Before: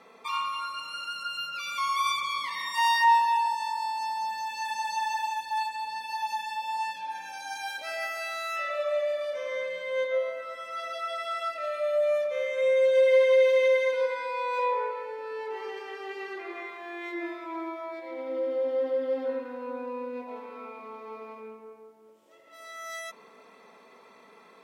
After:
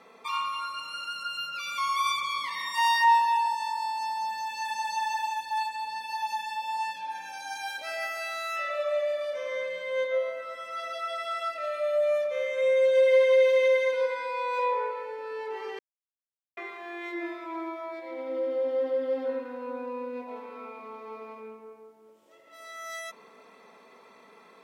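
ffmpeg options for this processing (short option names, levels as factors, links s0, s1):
-filter_complex "[0:a]asplit=3[s0][s1][s2];[s0]atrim=end=15.79,asetpts=PTS-STARTPTS,afade=t=out:st=15.786:d=0.004:c=hsin[s3];[s1]atrim=start=15.79:end=16.57,asetpts=PTS-STARTPTS,volume=0[s4];[s2]atrim=start=16.57,asetpts=PTS-STARTPTS,afade=t=in:d=0.004:c=hsin[s5];[s3][s4][s5]concat=n=3:v=0:a=1"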